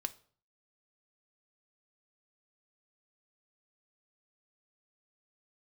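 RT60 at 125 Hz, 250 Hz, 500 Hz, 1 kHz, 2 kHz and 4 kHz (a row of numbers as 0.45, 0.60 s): 0.65, 0.50, 0.50, 0.45, 0.40, 0.40 s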